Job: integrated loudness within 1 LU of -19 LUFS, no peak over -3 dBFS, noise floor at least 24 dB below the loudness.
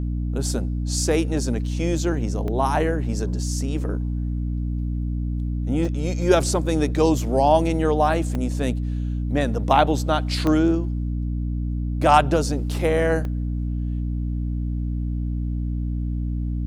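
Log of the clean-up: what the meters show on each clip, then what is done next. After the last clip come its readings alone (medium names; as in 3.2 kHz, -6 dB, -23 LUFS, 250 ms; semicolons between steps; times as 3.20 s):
dropouts 5; longest dropout 1.1 ms; hum 60 Hz; highest harmonic 300 Hz; hum level -22 dBFS; loudness -23.0 LUFS; peak level -4.0 dBFS; loudness target -19.0 LUFS
-> interpolate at 2.48/5.85/8.35/10.47/13.25 s, 1.1 ms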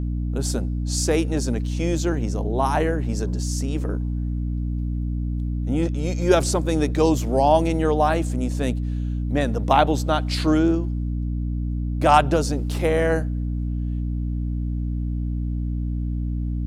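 dropouts 0; hum 60 Hz; highest harmonic 300 Hz; hum level -22 dBFS
-> hum notches 60/120/180/240/300 Hz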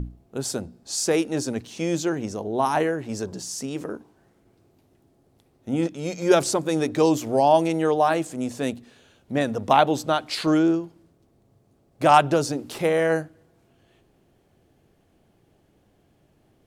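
hum not found; loudness -23.5 LUFS; peak level -3.5 dBFS; loudness target -19.0 LUFS
-> trim +4.5 dB; peak limiter -3 dBFS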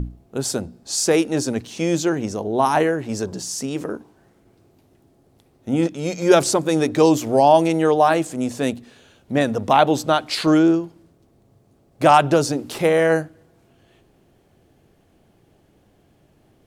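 loudness -19.0 LUFS; peak level -3.0 dBFS; noise floor -59 dBFS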